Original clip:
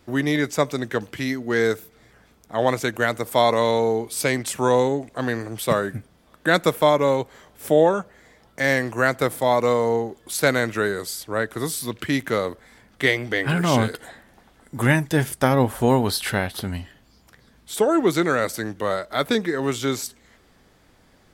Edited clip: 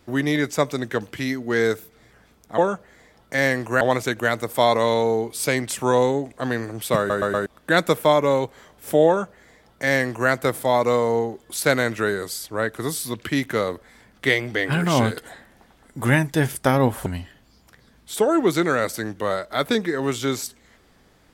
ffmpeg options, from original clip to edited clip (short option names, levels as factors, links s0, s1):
-filter_complex "[0:a]asplit=8[s0][s1][s2][s3][s4][s5][s6][s7];[s0]atrim=end=2.582[s8];[s1]atrim=start=7.838:end=9.072[s9];[s2]atrim=start=2.578:end=5.872[s10];[s3]atrim=start=5.748:end=5.872[s11];[s4]atrim=start=5.748:end=5.872[s12];[s5]atrim=start=5.748:end=5.872[s13];[s6]atrim=start=6.228:end=15.832[s14];[s7]atrim=start=16.658[s15];[s8][s9]acrossfade=d=0.004:c1=hsin:c2=hsin[s16];[s16][s10]acrossfade=d=0.004:c1=hsin:c2=hsin[s17];[s17][s11]acrossfade=d=0.004:c1=hsin:c2=hsin[s18];[s18][s12]acrossfade=d=0.004:c1=hsin:c2=hsin[s19];[s19][s13]acrossfade=d=0.004:c1=hsin:c2=hsin[s20];[s20][s14]acrossfade=d=0.004:c1=hsin:c2=hsin[s21];[s21][s15]acrossfade=d=0.004:c1=hsin:c2=hsin"